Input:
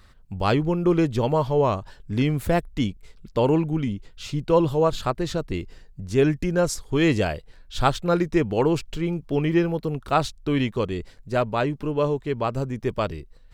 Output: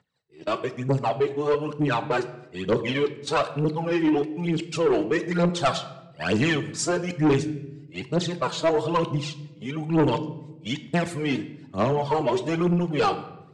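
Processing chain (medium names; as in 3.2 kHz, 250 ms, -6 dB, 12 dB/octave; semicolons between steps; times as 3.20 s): reverse the whole clip; phaser 1.1 Hz, delay 3.3 ms, feedback 72%; gate -28 dBFS, range -15 dB; high-pass 130 Hz 24 dB/octave; bass shelf 250 Hz -4.5 dB; reverberation RT60 0.95 s, pre-delay 7 ms, DRR 11.5 dB; saturation -15.5 dBFS, distortion -11 dB; steep low-pass 9 kHz 36 dB/octave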